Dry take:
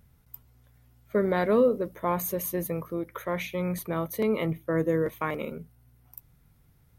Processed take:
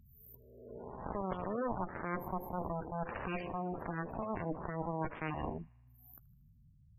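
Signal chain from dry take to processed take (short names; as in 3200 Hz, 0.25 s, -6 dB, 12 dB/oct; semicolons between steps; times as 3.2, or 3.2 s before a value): spectral swells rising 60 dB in 1.16 s; high shelf 2000 Hz -11.5 dB; added harmonics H 2 -8 dB, 3 -12 dB, 4 -7 dB, 7 -22 dB, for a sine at -12 dBFS; reverse; compressor 6:1, threshold -40 dBFS, peak gain reduction 21.5 dB; reverse; spectral gate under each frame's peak -15 dB strong; on a send: thin delay 78 ms, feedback 63%, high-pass 1400 Hz, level -23 dB; on the sum: gain +6 dB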